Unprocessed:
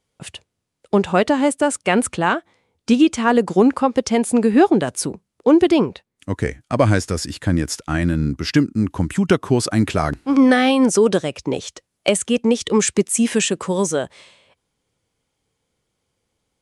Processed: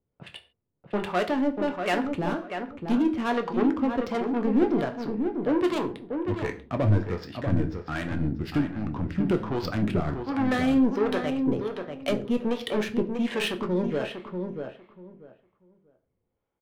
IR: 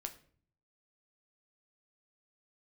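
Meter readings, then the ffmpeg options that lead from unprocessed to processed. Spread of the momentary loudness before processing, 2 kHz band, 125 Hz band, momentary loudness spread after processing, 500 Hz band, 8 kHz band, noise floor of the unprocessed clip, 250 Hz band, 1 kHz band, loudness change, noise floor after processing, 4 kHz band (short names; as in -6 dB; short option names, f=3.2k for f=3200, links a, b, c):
11 LU, -9.5 dB, -6.5 dB, 9 LU, -9.0 dB, under -25 dB, -77 dBFS, -8.0 dB, -9.0 dB, -9.0 dB, -79 dBFS, -10.5 dB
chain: -filter_complex "[0:a]asoftclip=type=tanh:threshold=-13dB,lowpass=f=4.6k:w=0.5412,lowpass=f=4.6k:w=1.3066,adynamicsmooth=sensitivity=3.5:basefreq=1.5k[a];[1:a]atrim=start_sample=2205,afade=t=out:st=0.21:d=0.01,atrim=end_sample=9702[b];[a][b]afir=irnorm=-1:irlink=0,acrossover=split=510[c][d];[c]aeval=exprs='val(0)*(1-0.7/2+0.7/2*cos(2*PI*1.3*n/s))':c=same[e];[d]aeval=exprs='val(0)*(1-0.7/2-0.7/2*cos(2*PI*1.3*n/s))':c=same[f];[e][f]amix=inputs=2:normalize=0,asplit=2[g][h];[h]adelay=640,lowpass=f=2k:p=1,volume=-6dB,asplit=2[i][j];[j]adelay=640,lowpass=f=2k:p=1,volume=0.2,asplit=2[k][l];[l]adelay=640,lowpass=f=2k:p=1,volume=0.2[m];[g][i][k][m]amix=inputs=4:normalize=0"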